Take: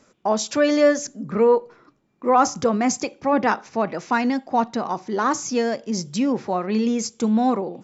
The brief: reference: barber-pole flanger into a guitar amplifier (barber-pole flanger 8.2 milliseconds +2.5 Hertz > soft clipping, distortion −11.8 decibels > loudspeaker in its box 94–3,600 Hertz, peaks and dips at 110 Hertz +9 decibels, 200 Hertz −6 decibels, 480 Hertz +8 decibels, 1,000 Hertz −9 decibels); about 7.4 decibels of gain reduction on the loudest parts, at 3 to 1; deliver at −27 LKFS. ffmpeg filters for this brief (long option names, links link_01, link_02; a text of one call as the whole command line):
ffmpeg -i in.wav -filter_complex "[0:a]acompressor=threshold=-22dB:ratio=3,asplit=2[link_01][link_02];[link_02]adelay=8.2,afreqshift=2.5[link_03];[link_01][link_03]amix=inputs=2:normalize=1,asoftclip=threshold=-25.5dB,highpass=94,equalizer=frequency=110:width_type=q:width=4:gain=9,equalizer=frequency=200:width_type=q:width=4:gain=-6,equalizer=frequency=480:width_type=q:width=4:gain=8,equalizer=frequency=1000:width_type=q:width=4:gain=-9,lowpass=frequency=3600:width=0.5412,lowpass=frequency=3600:width=1.3066,volume=4.5dB" out.wav